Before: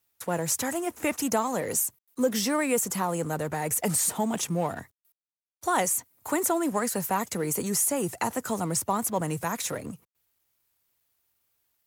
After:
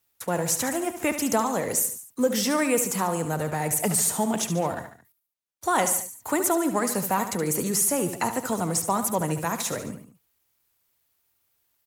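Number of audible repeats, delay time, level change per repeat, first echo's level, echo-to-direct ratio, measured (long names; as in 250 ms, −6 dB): 3, 72 ms, −5.5 dB, −10.0 dB, −8.5 dB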